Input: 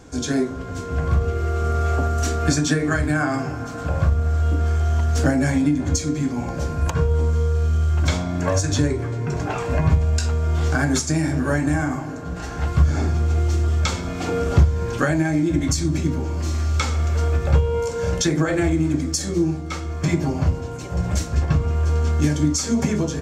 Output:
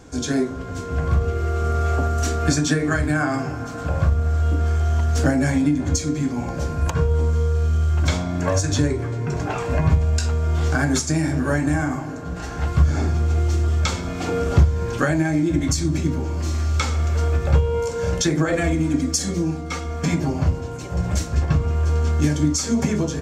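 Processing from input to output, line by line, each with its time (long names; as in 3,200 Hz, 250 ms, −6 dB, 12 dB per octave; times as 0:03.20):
0:18.52–0:20.20: comb filter 4.2 ms, depth 75%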